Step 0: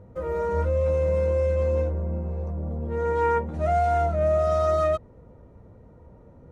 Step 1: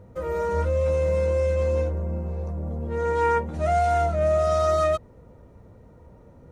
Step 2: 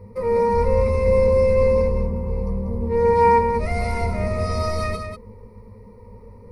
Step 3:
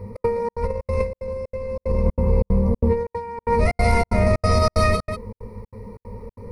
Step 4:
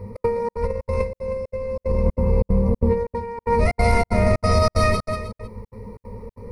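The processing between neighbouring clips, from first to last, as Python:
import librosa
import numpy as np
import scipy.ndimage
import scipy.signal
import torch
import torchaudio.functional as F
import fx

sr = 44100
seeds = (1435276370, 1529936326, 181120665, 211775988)

y1 = fx.high_shelf(x, sr, hz=2400.0, db=9.0)
y2 = fx.octave_divider(y1, sr, octaves=1, level_db=-3.0)
y2 = fx.ripple_eq(y2, sr, per_octave=0.89, db=18)
y2 = y2 + 10.0 ** (-7.5 / 20.0) * np.pad(y2, (int(191 * sr / 1000.0), 0))[:len(y2)]
y3 = fx.over_compress(y2, sr, threshold_db=-22.0, ratio=-0.5)
y3 = fx.step_gate(y3, sr, bpm=186, pattern='xx.xxx.xxx.x', floor_db=-60.0, edge_ms=4.5)
y3 = y3 * librosa.db_to_amplitude(3.5)
y4 = y3 + 10.0 ** (-13.5 / 20.0) * np.pad(y3, (int(313 * sr / 1000.0), 0))[:len(y3)]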